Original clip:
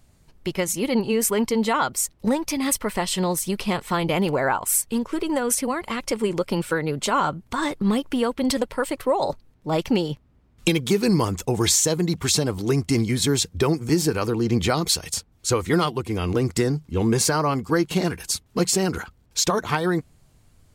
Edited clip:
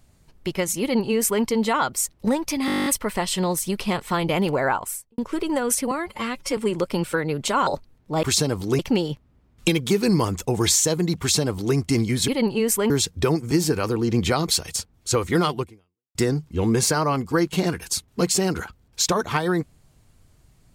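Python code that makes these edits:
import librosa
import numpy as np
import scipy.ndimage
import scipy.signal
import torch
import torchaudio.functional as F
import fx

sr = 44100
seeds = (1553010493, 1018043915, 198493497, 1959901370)

y = fx.studio_fade_out(x, sr, start_s=4.53, length_s=0.45)
y = fx.edit(y, sr, fx.duplicate(start_s=0.81, length_s=0.62, to_s=13.28),
    fx.stutter(start_s=2.66, slice_s=0.02, count=11),
    fx.stretch_span(start_s=5.71, length_s=0.44, factor=1.5),
    fx.cut(start_s=7.25, length_s=1.98),
    fx.duplicate(start_s=12.2, length_s=0.56, to_s=9.79),
    fx.fade_out_span(start_s=16.0, length_s=0.53, curve='exp'), tone=tone)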